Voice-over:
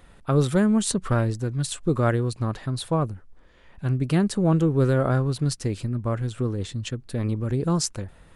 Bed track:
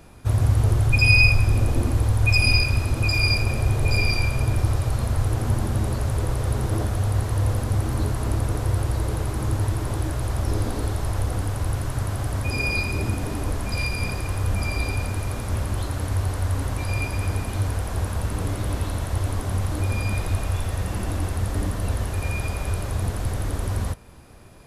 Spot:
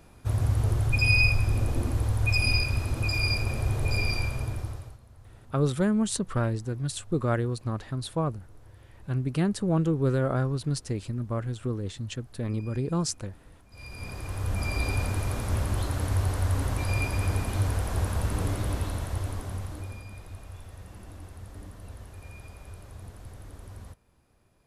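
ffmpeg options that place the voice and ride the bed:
-filter_complex "[0:a]adelay=5250,volume=-4.5dB[a];[1:a]volume=21.5dB,afade=t=out:st=4.17:d=0.82:silence=0.0668344,afade=t=in:st=13.7:d=1.26:silence=0.0421697,afade=t=out:st=18.41:d=1.64:silence=0.149624[b];[a][b]amix=inputs=2:normalize=0"

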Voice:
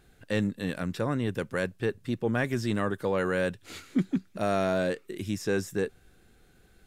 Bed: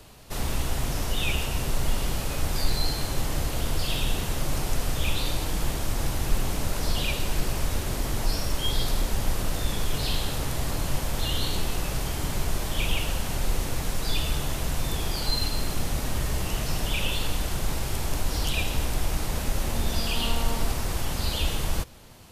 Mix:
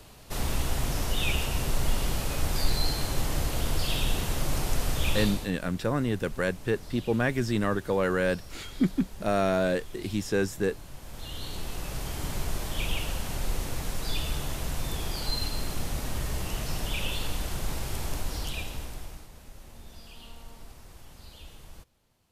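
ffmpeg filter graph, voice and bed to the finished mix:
-filter_complex "[0:a]adelay=4850,volume=1.5dB[a];[1:a]volume=12.5dB,afade=t=out:st=5.21:d=0.3:silence=0.149624,afade=t=in:st=10.97:d=1.3:silence=0.211349,afade=t=out:st=18.06:d=1.23:silence=0.141254[b];[a][b]amix=inputs=2:normalize=0"

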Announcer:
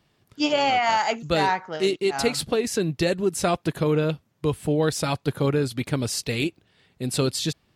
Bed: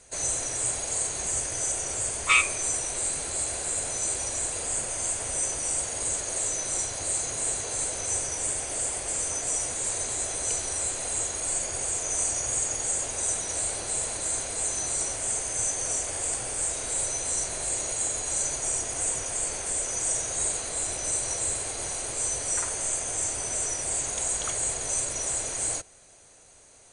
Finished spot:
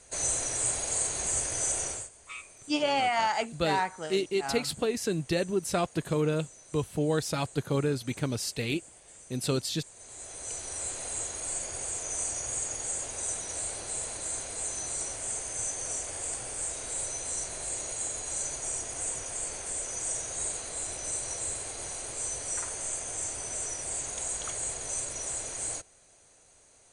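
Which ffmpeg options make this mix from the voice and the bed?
-filter_complex "[0:a]adelay=2300,volume=-5.5dB[a];[1:a]volume=16dB,afade=t=out:st=1.84:d=0.25:silence=0.0841395,afade=t=in:st=9.94:d=0.97:silence=0.141254[b];[a][b]amix=inputs=2:normalize=0"

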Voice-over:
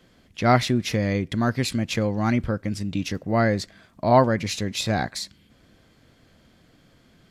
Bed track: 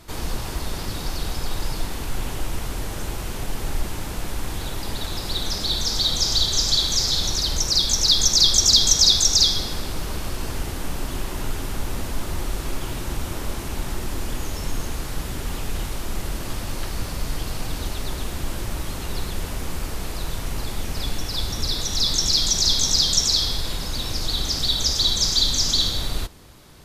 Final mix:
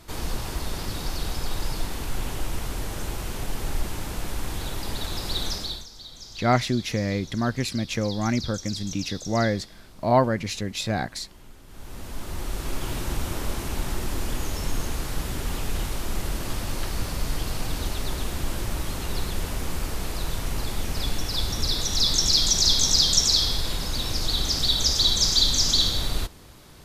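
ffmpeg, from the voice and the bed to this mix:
-filter_complex "[0:a]adelay=6000,volume=-2.5dB[a];[1:a]volume=19dB,afade=t=out:st=5.45:d=0.42:silence=0.105925,afade=t=in:st=11.66:d=1.28:silence=0.0891251[b];[a][b]amix=inputs=2:normalize=0"

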